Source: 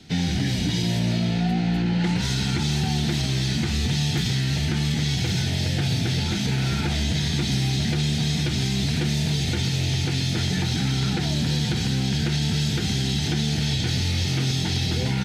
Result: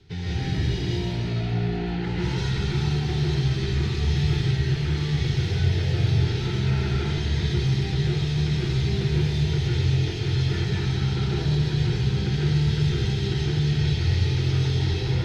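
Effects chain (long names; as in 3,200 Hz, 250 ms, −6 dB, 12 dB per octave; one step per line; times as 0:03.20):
drawn EQ curve 110 Hz 0 dB, 250 Hz −19 dB, 400 Hz 0 dB, 600 Hz −17 dB, 940 Hz −7 dB, 5,100 Hz −13 dB, 8,400 Hz −21 dB
convolution reverb RT60 1.1 s, pre-delay 100 ms, DRR −6 dB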